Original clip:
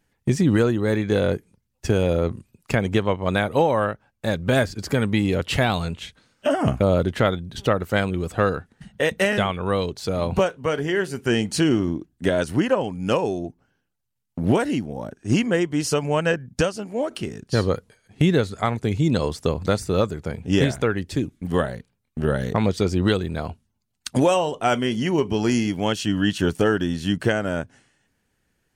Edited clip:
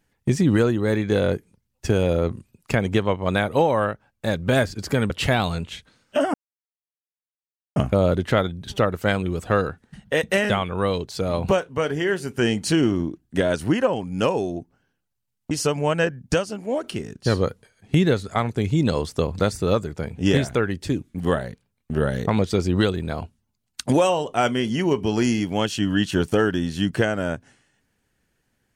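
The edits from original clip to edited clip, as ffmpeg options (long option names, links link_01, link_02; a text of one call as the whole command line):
ffmpeg -i in.wav -filter_complex "[0:a]asplit=4[link_01][link_02][link_03][link_04];[link_01]atrim=end=5.102[link_05];[link_02]atrim=start=5.398:end=6.64,asetpts=PTS-STARTPTS,afade=type=out:start_time=1.238:duration=0.004:curve=hsin,apad=pad_dur=1.42[link_06];[link_03]atrim=start=6.64:end=14.392,asetpts=PTS-STARTPTS,afade=type=in:duration=0.004:curve=hsin[link_07];[link_04]atrim=start=15.778[link_08];[link_06][link_07]concat=n=2:v=0:a=1[link_09];[link_05][link_09]acrossfade=duration=0.004:curve1=hsin:curve2=hsin[link_10];[link_10][link_08]acrossfade=duration=0.004:curve1=hsin:curve2=hsin" out.wav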